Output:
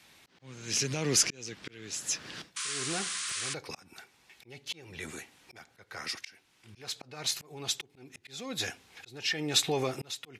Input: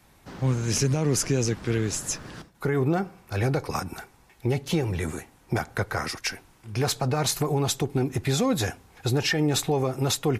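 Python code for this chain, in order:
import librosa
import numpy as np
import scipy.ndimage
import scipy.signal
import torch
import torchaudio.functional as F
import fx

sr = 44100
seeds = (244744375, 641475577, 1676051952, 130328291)

y = fx.auto_swell(x, sr, attack_ms=734.0)
y = fx.weighting(y, sr, curve='D')
y = fx.spec_paint(y, sr, seeds[0], shape='noise', start_s=2.56, length_s=0.98, low_hz=1000.0, high_hz=10000.0, level_db=-31.0)
y = F.gain(torch.from_numpy(y), -4.5).numpy()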